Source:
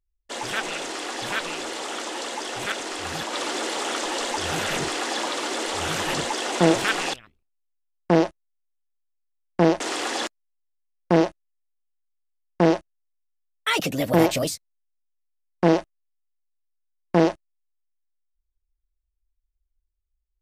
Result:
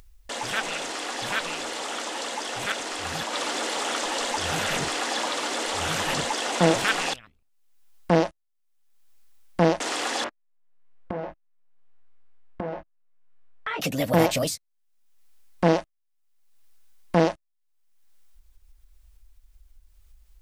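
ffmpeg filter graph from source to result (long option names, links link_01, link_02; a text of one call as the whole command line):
ffmpeg -i in.wav -filter_complex "[0:a]asettb=1/sr,asplit=3[link_01][link_02][link_03];[link_01]atrim=end=10.244[link_04];[link_02]atrim=start=10.24:end=13.81,asetpts=PTS-STARTPTS,afade=type=in:duration=0.004:curve=qsin,afade=type=out:start_time=3.566:duration=0.004:curve=qsin,lowpass=1800,asplit=2[link_05][link_06];[link_06]adelay=20,volume=-2.5dB[link_07];[link_05][link_07]amix=inputs=2:normalize=0,atrim=end_sample=157437,acompressor=threshold=-25dB:ratio=16:attack=3.2:release=140:knee=1:detection=peak[link_08];[link_03]atrim=start=13.806[link_09];[link_04][link_08]acrossfade=duration=0.004:curve1=hsin:curve2=qsin[link_10];[link_10][link_09]acrossfade=duration=0.004:curve1=qsin:curve2=hsin,equalizer=frequency=360:width=4.1:gain=-7.5,acompressor=mode=upward:threshold=-32dB:ratio=2.5" out.wav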